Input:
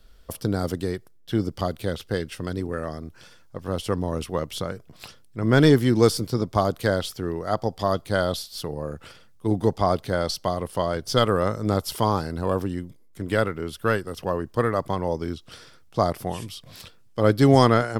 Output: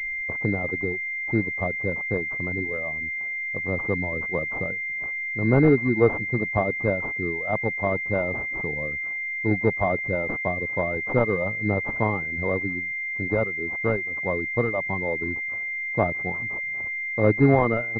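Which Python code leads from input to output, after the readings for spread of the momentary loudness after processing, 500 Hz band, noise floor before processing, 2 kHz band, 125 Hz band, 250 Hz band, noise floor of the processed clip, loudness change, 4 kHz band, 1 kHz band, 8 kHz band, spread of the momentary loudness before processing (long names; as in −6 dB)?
7 LU, −1.5 dB, −52 dBFS, +10.5 dB, −2.5 dB, −2.0 dB, −30 dBFS, 0.0 dB, below −25 dB, −4.5 dB, below −25 dB, 17 LU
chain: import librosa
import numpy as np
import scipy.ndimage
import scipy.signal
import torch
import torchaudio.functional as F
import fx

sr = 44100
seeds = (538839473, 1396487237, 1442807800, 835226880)

y = fx.dereverb_blind(x, sr, rt60_s=1.2)
y = fx.pwm(y, sr, carrier_hz=2100.0)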